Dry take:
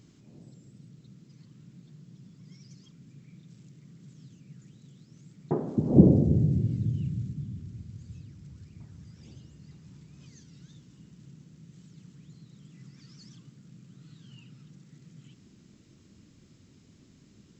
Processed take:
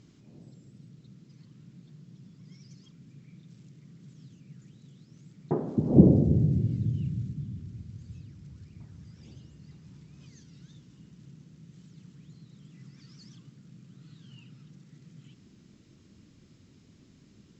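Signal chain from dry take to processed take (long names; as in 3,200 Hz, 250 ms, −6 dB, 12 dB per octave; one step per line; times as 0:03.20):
low-pass filter 6,900 Hz 12 dB per octave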